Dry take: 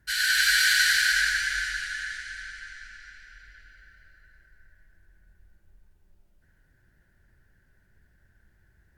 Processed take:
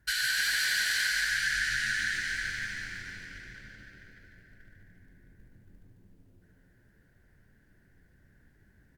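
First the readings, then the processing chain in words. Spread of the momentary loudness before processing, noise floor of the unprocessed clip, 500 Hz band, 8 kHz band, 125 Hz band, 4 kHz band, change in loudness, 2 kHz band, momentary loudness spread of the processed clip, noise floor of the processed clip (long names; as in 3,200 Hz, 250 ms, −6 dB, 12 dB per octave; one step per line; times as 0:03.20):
20 LU, −65 dBFS, can't be measured, −5.0 dB, +5.5 dB, −5.5 dB, −6.0 dB, −4.5 dB, 18 LU, −64 dBFS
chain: leveller curve on the samples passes 1
downward compressor 8 to 1, threshold −28 dBFS, peak gain reduction 12.5 dB
echo with shifted repeats 146 ms, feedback 58%, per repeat +83 Hz, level −5 dB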